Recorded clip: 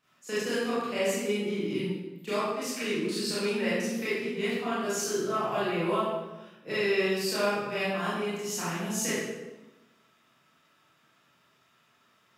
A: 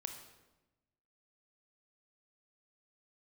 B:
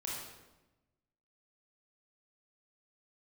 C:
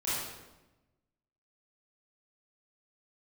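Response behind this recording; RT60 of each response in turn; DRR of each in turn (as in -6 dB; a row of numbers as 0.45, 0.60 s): C; 1.0, 1.0, 1.0 s; 5.0, -5.0, -11.5 dB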